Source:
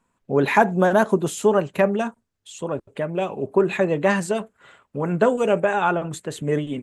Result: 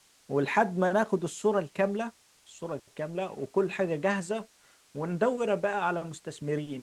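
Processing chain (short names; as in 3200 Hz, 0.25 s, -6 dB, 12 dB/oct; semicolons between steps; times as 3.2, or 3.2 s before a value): G.711 law mismatch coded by A; added noise white -52 dBFS; Chebyshev low-pass 8100 Hz, order 2; gain -7 dB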